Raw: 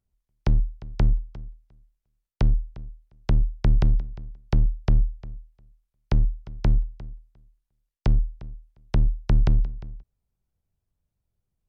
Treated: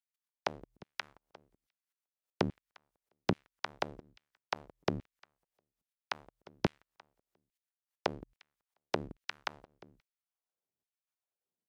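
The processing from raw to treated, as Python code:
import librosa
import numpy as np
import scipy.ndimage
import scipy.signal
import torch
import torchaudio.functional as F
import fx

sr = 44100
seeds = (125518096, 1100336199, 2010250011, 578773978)

y = fx.level_steps(x, sr, step_db=23)
y = fx.filter_lfo_highpass(y, sr, shape='saw_down', hz=1.2, low_hz=230.0, high_hz=2600.0, q=1.3)
y = y * librosa.db_to_amplitude(5.5)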